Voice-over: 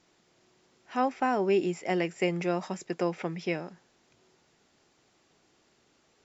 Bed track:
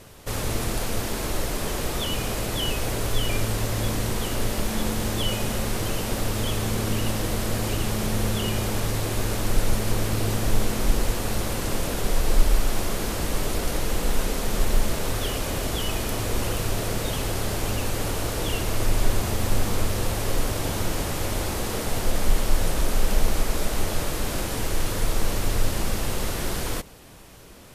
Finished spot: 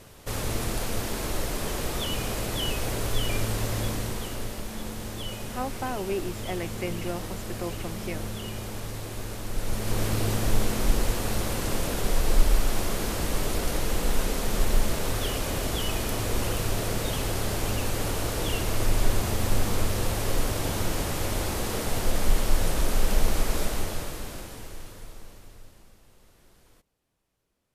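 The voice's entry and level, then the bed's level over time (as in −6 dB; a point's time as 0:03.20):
4.60 s, −5.0 dB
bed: 0:03.76 −2.5 dB
0:04.63 −9.5 dB
0:09.51 −9.5 dB
0:10.03 −1.5 dB
0:23.61 −1.5 dB
0:26.01 −31 dB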